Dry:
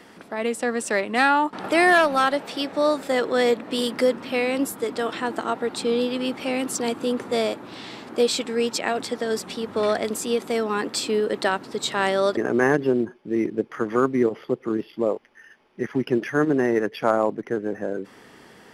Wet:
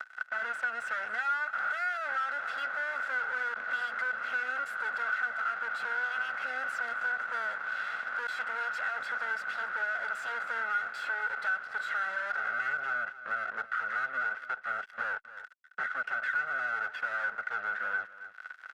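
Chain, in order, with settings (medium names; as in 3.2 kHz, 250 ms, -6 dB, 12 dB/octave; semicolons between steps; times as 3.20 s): comb filter that takes the minimum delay 1.5 ms; fuzz box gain 38 dB, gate -45 dBFS; band-pass filter 1.5 kHz, Q 18; delay 268 ms -18.5 dB; three bands compressed up and down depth 70%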